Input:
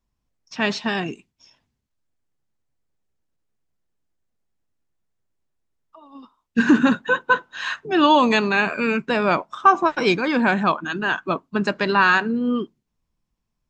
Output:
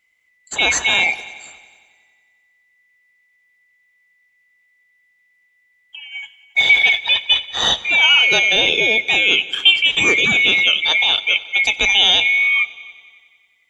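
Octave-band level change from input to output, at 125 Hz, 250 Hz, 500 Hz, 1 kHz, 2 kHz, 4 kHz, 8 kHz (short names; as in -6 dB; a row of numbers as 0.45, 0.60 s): -6.0 dB, -13.5 dB, -4.5 dB, -8.0 dB, +8.0 dB, +17.5 dB, n/a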